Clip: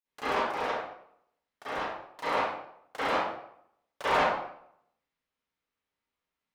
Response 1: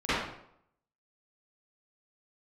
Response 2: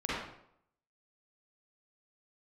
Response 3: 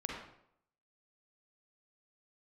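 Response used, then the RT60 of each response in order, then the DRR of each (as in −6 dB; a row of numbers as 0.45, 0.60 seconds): 1; 0.70, 0.70, 0.70 seconds; −18.0, −8.5, −1.5 decibels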